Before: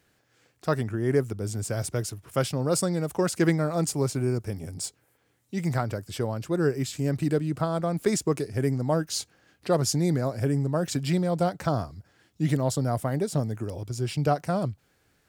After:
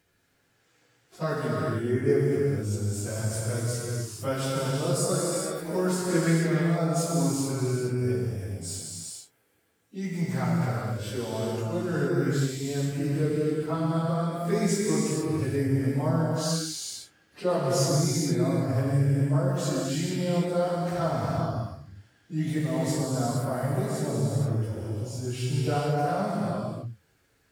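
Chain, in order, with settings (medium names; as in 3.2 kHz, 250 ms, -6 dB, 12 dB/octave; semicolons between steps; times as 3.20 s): plain phase-vocoder stretch 1.8×; gated-style reverb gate 490 ms flat, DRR -4 dB; trim -3 dB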